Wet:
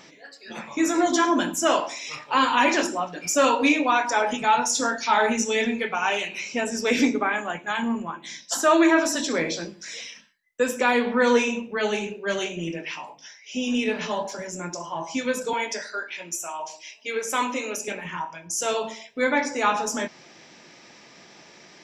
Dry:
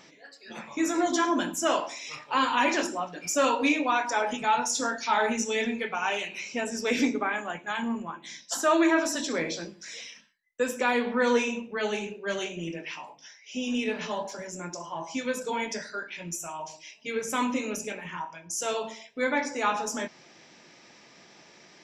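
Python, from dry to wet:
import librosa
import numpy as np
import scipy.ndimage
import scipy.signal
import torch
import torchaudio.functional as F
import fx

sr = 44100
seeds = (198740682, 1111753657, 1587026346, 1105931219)

y = fx.highpass(x, sr, hz=380.0, slope=12, at=(15.53, 17.88))
y = y * librosa.db_to_amplitude(4.5)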